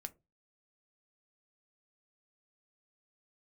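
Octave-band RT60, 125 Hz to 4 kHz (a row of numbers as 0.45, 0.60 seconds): 0.40, 0.30, 0.25, 0.20, 0.15, 0.10 seconds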